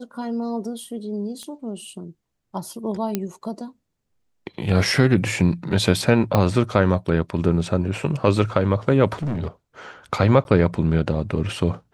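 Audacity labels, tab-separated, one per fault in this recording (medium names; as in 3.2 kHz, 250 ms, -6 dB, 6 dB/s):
1.430000	1.430000	pop -23 dBFS
3.150000	3.150000	pop -9 dBFS
6.350000	6.350000	pop -6 dBFS
9.190000	9.470000	clipped -21.5 dBFS
10.440000	10.450000	dropout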